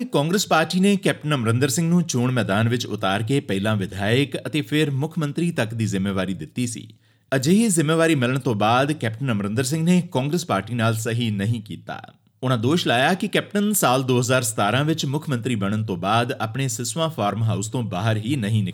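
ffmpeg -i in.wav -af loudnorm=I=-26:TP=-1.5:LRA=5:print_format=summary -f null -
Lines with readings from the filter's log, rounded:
Input Integrated:    -21.8 LUFS
Input True Peak:      -5.4 dBTP
Input LRA:             2.8 LU
Input Threshold:     -31.9 LUFS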